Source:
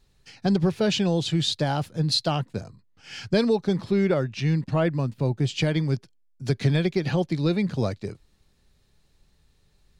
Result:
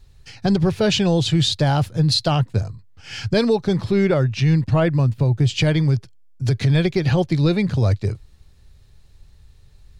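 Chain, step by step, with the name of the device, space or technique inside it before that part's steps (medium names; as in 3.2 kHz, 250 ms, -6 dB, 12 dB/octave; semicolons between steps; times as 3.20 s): car stereo with a boomy subwoofer (resonant low shelf 140 Hz +8.5 dB, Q 1.5; peak limiter -15.5 dBFS, peak gain reduction 9 dB); trim +6 dB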